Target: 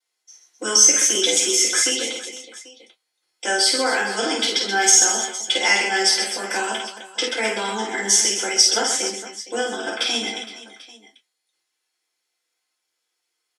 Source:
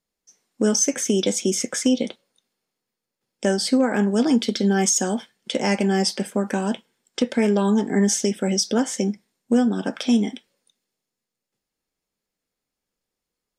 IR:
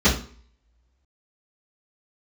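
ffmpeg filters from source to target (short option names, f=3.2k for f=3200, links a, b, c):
-filter_complex "[0:a]highpass=1.4k,aecho=1:1:50|130|258|462.8|790.5:0.631|0.398|0.251|0.158|0.1[a];[1:a]atrim=start_sample=2205,atrim=end_sample=3528,asetrate=74970,aresample=44100[b];[a][b]afir=irnorm=-1:irlink=0,volume=-5.5dB"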